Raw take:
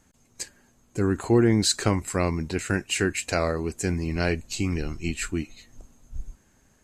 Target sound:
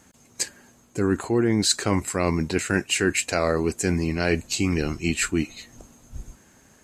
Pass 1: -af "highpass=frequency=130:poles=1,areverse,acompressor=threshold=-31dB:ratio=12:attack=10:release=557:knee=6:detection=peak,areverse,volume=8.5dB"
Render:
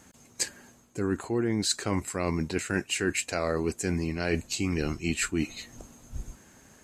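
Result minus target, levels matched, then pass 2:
downward compressor: peak gain reduction +6.5 dB
-af "highpass=frequency=130:poles=1,areverse,acompressor=threshold=-24dB:ratio=12:attack=10:release=557:knee=6:detection=peak,areverse,volume=8.5dB"

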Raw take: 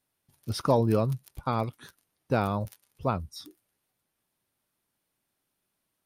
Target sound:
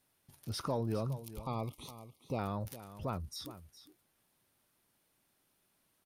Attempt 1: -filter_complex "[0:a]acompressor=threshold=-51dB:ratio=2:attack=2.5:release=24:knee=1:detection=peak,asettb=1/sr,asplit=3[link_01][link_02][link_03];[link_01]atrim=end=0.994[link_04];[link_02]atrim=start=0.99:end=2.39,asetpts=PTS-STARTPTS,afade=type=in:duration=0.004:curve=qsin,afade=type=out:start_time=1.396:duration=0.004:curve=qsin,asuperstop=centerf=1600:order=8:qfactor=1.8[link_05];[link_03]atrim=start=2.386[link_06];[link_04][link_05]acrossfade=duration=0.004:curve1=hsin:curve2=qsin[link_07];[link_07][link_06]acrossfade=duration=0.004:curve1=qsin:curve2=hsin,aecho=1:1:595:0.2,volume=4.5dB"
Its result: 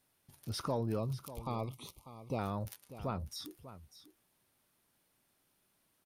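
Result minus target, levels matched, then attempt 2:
echo 183 ms late
-filter_complex "[0:a]acompressor=threshold=-51dB:ratio=2:attack=2.5:release=24:knee=1:detection=peak,asettb=1/sr,asplit=3[link_01][link_02][link_03];[link_01]atrim=end=0.994[link_04];[link_02]atrim=start=0.99:end=2.39,asetpts=PTS-STARTPTS,afade=type=in:duration=0.004:curve=qsin,afade=type=out:start_time=1.396:duration=0.004:curve=qsin,asuperstop=centerf=1600:order=8:qfactor=1.8[link_05];[link_03]atrim=start=2.386[link_06];[link_04][link_05]acrossfade=duration=0.004:curve1=hsin:curve2=qsin[link_07];[link_07][link_06]acrossfade=duration=0.004:curve1=qsin:curve2=hsin,aecho=1:1:412:0.2,volume=4.5dB"

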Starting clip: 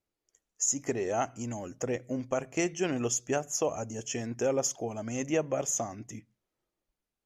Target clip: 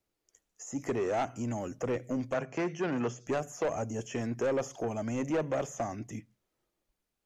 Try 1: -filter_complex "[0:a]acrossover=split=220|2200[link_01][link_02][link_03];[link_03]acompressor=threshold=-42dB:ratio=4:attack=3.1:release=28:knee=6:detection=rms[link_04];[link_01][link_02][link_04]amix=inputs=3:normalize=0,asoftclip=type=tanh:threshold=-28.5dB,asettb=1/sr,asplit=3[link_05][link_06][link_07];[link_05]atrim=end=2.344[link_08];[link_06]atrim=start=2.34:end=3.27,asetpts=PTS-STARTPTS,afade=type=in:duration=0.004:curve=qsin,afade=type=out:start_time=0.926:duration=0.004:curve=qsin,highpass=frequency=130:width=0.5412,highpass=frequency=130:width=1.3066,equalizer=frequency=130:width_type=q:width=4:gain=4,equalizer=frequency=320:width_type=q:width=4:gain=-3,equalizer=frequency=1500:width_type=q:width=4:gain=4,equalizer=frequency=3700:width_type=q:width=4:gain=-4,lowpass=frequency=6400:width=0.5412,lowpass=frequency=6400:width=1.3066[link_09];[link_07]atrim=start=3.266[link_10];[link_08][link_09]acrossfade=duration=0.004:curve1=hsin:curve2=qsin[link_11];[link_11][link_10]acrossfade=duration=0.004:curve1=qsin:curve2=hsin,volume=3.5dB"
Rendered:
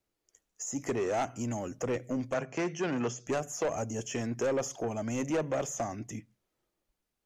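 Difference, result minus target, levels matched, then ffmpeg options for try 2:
downward compressor: peak gain reduction −8 dB
-filter_complex "[0:a]acrossover=split=220|2200[link_01][link_02][link_03];[link_03]acompressor=threshold=-52.5dB:ratio=4:attack=3.1:release=28:knee=6:detection=rms[link_04];[link_01][link_02][link_04]amix=inputs=3:normalize=0,asoftclip=type=tanh:threshold=-28.5dB,asettb=1/sr,asplit=3[link_05][link_06][link_07];[link_05]atrim=end=2.344[link_08];[link_06]atrim=start=2.34:end=3.27,asetpts=PTS-STARTPTS,afade=type=in:duration=0.004:curve=qsin,afade=type=out:start_time=0.926:duration=0.004:curve=qsin,highpass=frequency=130:width=0.5412,highpass=frequency=130:width=1.3066,equalizer=frequency=130:width_type=q:width=4:gain=4,equalizer=frequency=320:width_type=q:width=4:gain=-3,equalizer=frequency=1500:width_type=q:width=4:gain=4,equalizer=frequency=3700:width_type=q:width=4:gain=-4,lowpass=frequency=6400:width=0.5412,lowpass=frequency=6400:width=1.3066[link_09];[link_07]atrim=start=3.266[link_10];[link_08][link_09]acrossfade=duration=0.004:curve1=hsin:curve2=qsin[link_11];[link_11][link_10]acrossfade=duration=0.004:curve1=qsin:curve2=hsin,volume=3.5dB"

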